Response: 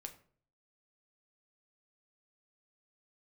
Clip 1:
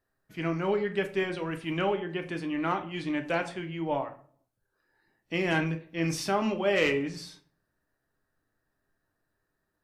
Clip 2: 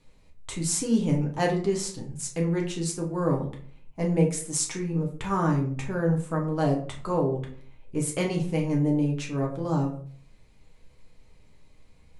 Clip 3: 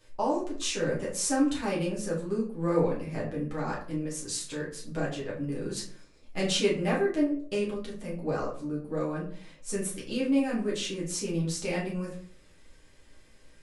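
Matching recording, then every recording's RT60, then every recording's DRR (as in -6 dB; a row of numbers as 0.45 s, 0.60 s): 1; 0.50 s, 0.50 s, 0.50 s; 5.0 dB, -1.0 dB, -6.5 dB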